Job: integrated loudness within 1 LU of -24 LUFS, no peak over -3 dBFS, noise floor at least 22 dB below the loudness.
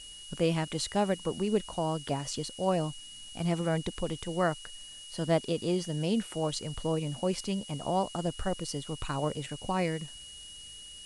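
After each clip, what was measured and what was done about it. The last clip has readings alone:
steady tone 2900 Hz; tone level -46 dBFS; noise floor -47 dBFS; noise floor target -54 dBFS; loudness -32.0 LUFS; peak -14.0 dBFS; loudness target -24.0 LUFS
-> notch 2900 Hz, Q 30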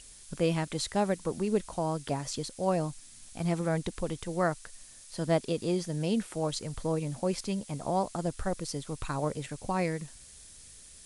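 steady tone none; noise floor -52 dBFS; noise floor target -54 dBFS
-> noise print and reduce 6 dB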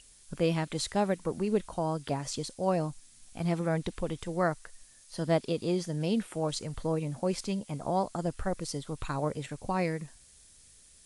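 noise floor -58 dBFS; loudness -32.0 LUFS; peak -14.0 dBFS; loudness target -24.0 LUFS
-> gain +8 dB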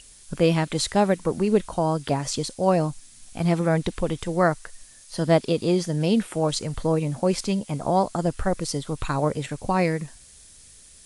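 loudness -24.0 LUFS; peak -6.0 dBFS; noise floor -50 dBFS

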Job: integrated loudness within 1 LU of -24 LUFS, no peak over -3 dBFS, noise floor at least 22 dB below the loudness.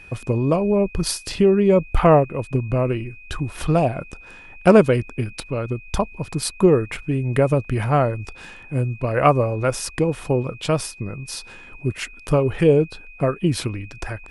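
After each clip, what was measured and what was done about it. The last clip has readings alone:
steady tone 2500 Hz; tone level -42 dBFS; loudness -20.5 LUFS; peak -1.0 dBFS; loudness target -24.0 LUFS
-> notch 2500 Hz, Q 30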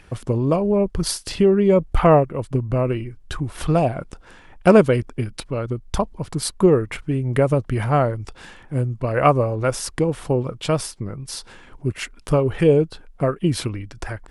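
steady tone none; loudness -20.5 LUFS; peak -1.5 dBFS; loudness target -24.0 LUFS
-> gain -3.5 dB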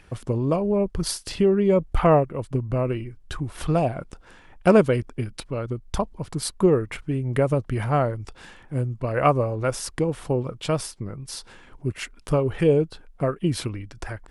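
loudness -24.0 LUFS; peak -5.0 dBFS; noise floor -51 dBFS

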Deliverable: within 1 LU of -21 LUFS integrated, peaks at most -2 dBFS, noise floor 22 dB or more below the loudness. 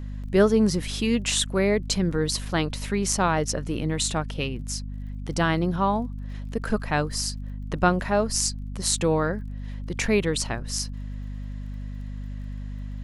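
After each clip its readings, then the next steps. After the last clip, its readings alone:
ticks 25/s; hum 50 Hz; harmonics up to 250 Hz; hum level -31 dBFS; loudness -25.0 LUFS; peak -6.0 dBFS; loudness target -21.0 LUFS
-> de-click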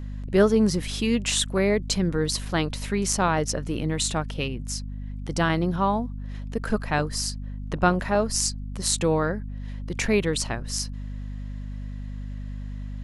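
ticks 0.077/s; hum 50 Hz; harmonics up to 250 Hz; hum level -31 dBFS
-> notches 50/100/150/200/250 Hz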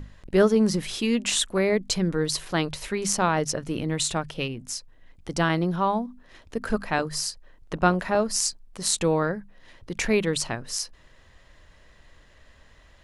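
hum none; loudness -25.5 LUFS; peak -5.5 dBFS; loudness target -21.0 LUFS
-> gain +4.5 dB; limiter -2 dBFS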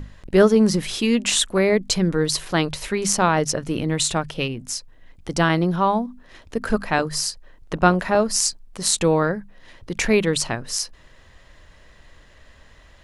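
loudness -21.0 LUFS; peak -2.0 dBFS; noise floor -50 dBFS

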